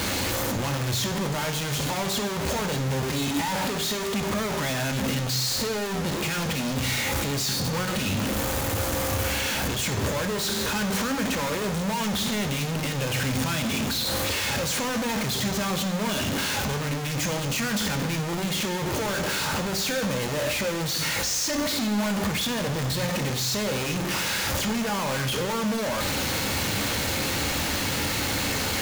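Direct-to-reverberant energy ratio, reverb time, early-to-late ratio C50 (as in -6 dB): 6.0 dB, 1.0 s, 10.5 dB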